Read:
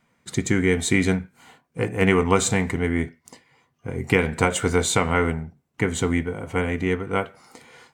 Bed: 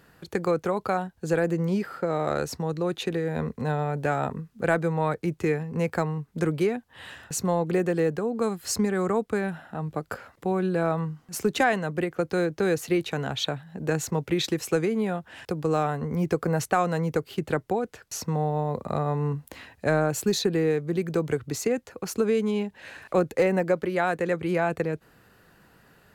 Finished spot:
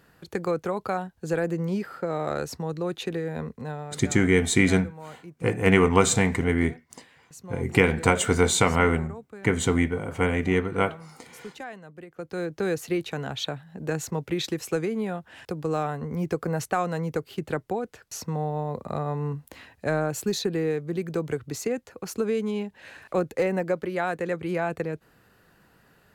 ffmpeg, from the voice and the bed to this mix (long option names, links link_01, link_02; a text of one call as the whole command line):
ffmpeg -i stem1.wav -i stem2.wav -filter_complex "[0:a]adelay=3650,volume=0dB[link_01];[1:a]volume=12dB,afade=type=out:start_time=3.19:duration=0.93:silence=0.188365,afade=type=in:start_time=12.07:duration=0.54:silence=0.199526[link_02];[link_01][link_02]amix=inputs=2:normalize=0" out.wav